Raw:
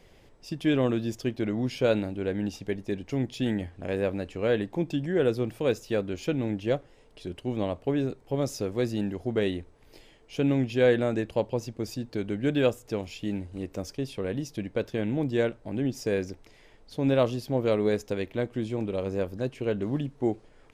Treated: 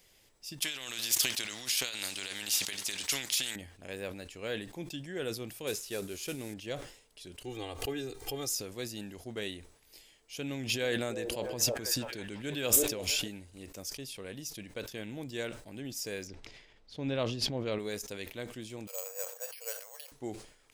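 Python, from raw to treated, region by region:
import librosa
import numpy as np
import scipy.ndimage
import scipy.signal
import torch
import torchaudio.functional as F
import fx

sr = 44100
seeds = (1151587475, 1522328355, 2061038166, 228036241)

y = fx.chain(x, sr, fx.weighting(curve='D'),
    fx.over_compress(threshold_db=-32.0, ratio=-1.0),
    fx.spectral_comp(ratio=2.0), at=(0.62, 3.56))
y = fx.chain(y, sr, fx.cvsd(bps=64000),
    fx.peak_eq(hz=400.0, db=8.0, octaves=0.23), at=(5.67, 6.54))
y = fx.chain(y, sr, fx.comb(ms=2.5, depth=0.89),
    fx.pre_swell(db_per_s=110.0), at=(7.44, 8.55))
y = fx.chain(y, sr, fx.echo_stepped(ms=328, hz=490.0, octaves=0.7, feedback_pct=70, wet_db=-7),
    fx.sustainer(db_per_s=27.0), at=(10.49, 13.28))
y = fx.chain(y, sr, fx.lowpass(hz=4000.0, slope=12),
    fx.low_shelf(hz=400.0, db=5.5),
    fx.sustainer(db_per_s=47.0), at=(16.27, 17.79))
y = fx.chain(y, sr, fx.brickwall_highpass(low_hz=450.0),
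    fx.high_shelf(hz=3600.0, db=-5.5),
    fx.resample_bad(factor=6, down='filtered', up='hold'), at=(18.87, 20.12))
y = scipy.signal.lfilter([1.0, -0.9], [1.0], y)
y = fx.sustainer(y, sr, db_per_s=99.0)
y = F.gain(torch.from_numpy(y), 5.5).numpy()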